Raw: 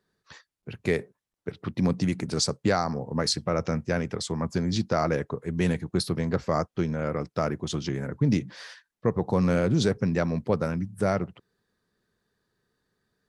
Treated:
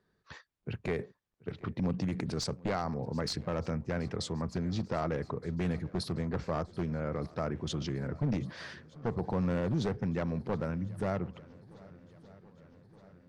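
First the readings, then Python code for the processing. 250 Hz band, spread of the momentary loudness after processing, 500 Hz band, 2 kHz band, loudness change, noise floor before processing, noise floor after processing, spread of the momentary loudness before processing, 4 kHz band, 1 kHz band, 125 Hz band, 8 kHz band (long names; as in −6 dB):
−7.0 dB, 14 LU, −8.0 dB, −8.5 dB, −7.5 dB, −83 dBFS, −75 dBFS, 8 LU, −9.0 dB, −7.5 dB, −6.0 dB, −12.0 dB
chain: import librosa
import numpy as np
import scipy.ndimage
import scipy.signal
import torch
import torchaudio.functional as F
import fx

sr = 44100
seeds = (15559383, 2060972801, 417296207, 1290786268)

p1 = np.minimum(x, 2.0 * 10.0 ** (-18.0 / 20.0) - x)
p2 = fx.lowpass(p1, sr, hz=2600.0, slope=6)
p3 = fx.peak_eq(p2, sr, hz=65.0, db=4.0, octaves=1.6)
p4 = fx.over_compress(p3, sr, threshold_db=-36.0, ratio=-1.0)
p5 = p3 + (p4 * librosa.db_to_amplitude(-2.5))
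p6 = fx.echo_swing(p5, sr, ms=1220, ratio=1.5, feedback_pct=59, wet_db=-23)
y = p6 * librosa.db_to_amplitude(-8.5)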